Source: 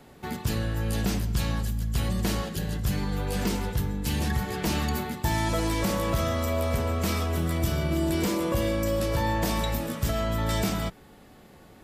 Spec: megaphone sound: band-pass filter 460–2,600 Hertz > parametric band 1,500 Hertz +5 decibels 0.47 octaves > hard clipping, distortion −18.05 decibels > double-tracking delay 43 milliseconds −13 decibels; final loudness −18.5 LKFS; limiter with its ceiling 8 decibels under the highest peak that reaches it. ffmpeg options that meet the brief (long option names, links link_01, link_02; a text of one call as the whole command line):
ffmpeg -i in.wav -filter_complex "[0:a]alimiter=limit=-23dB:level=0:latency=1,highpass=460,lowpass=2600,equalizer=frequency=1500:width_type=o:width=0.47:gain=5,asoftclip=type=hard:threshold=-31dB,asplit=2[link_01][link_02];[link_02]adelay=43,volume=-13dB[link_03];[link_01][link_03]amix=inputs=2:normalize=0,volume=18.5dB" out.wav